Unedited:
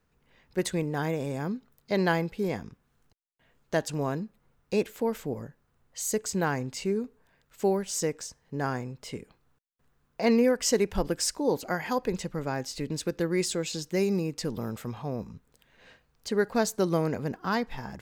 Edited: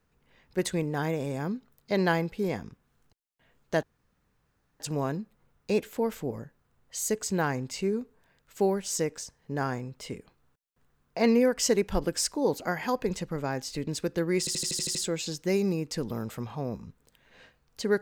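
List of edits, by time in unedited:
0:03.83: splice in room tone 0.97 s
0:13.42: stutter 0.08 s, 8 plays

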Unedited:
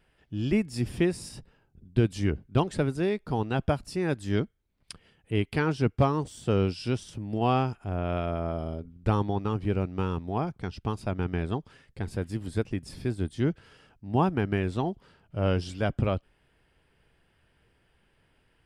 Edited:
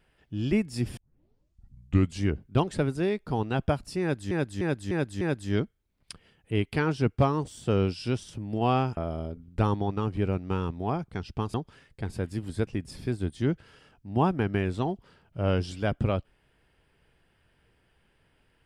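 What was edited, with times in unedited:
0:00.97: tape start 1.26 s
0:04.01–0:04.31: repeat, 5 plays
0:07.77–0:08.45: remove
0:11.02–0:11.52: remove

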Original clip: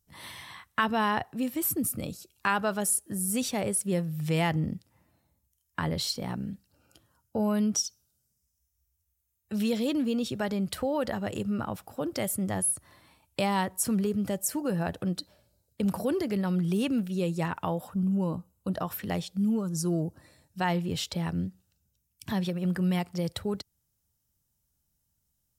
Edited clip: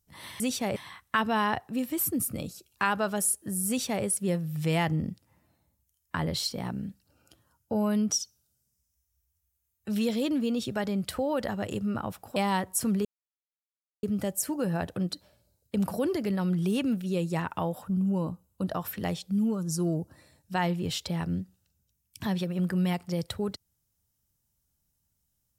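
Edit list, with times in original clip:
0:03.32–0:03.68: duplicate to 0:00.40
0:12.00–0:13.40: remove
0:14.09: splice in silence 0.98 s

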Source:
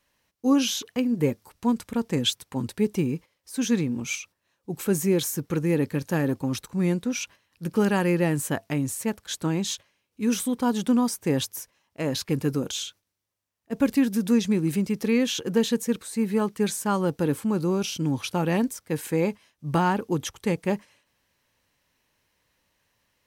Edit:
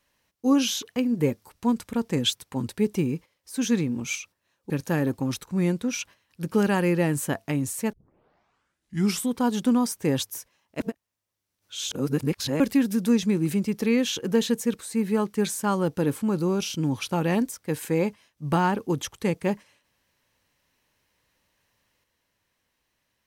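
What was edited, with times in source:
0:04.70–0:05.92: remove
0:09.15: tape start 1.34 s
0:12.02–0:13.82: reverse

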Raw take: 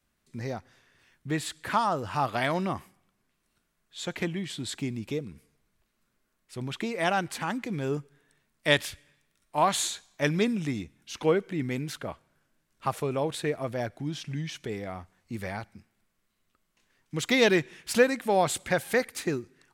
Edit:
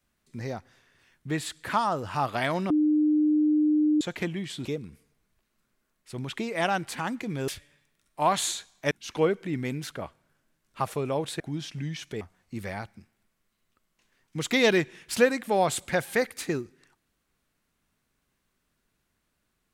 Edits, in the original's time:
0:02.70–0:04.01: beep over 303 Hz −19 dBFS
0:04.65–0:05.08: remove
0:07.91–0:08.84: remove
0:10.27–0:10.97: remove
0:13.46–0:13.93: remove
0:14.74–0:14.99: remove

